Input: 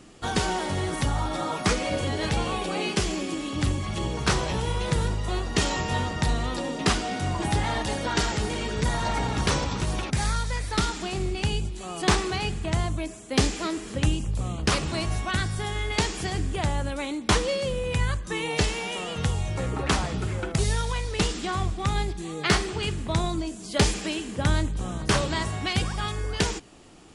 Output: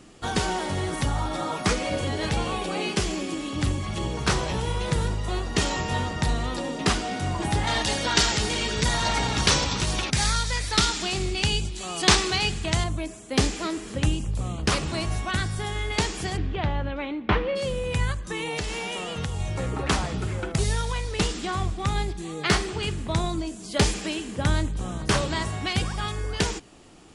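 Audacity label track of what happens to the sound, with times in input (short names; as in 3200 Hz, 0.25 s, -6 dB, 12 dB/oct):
7.670000	12.840000	bell 4700 Hz +9 dB 2.5 oct
16.360000	17.550000	LPF 4200 Hz -> 2600 Hz 24 dB/oct
18.120000	19.400000	compressor, threshold -25 dBFS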